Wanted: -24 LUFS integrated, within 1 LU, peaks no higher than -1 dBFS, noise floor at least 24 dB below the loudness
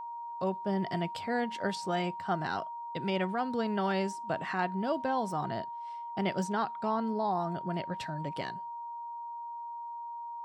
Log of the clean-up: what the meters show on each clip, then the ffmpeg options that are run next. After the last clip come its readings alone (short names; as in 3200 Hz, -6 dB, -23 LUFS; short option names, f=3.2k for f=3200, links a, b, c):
steady tone 940 Hz; tone level -38 dBFS; loudness -34.0 LUFS; peak -18.0 dBFS; loudness target -24.0 LUFS
-> -af "bandreject=f=940:w=30"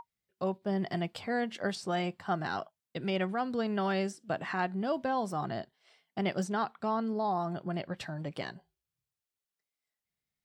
steady tone none; loudness -34.0 LUFS; peak -18.5 dBFS; loudness target -24.0 LUFS
-> -af "volume=10dB"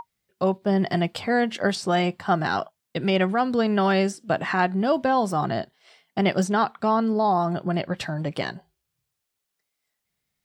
loudness -24.0 LUFS; peak -8.5 dBFS; noise floor -81 dBFS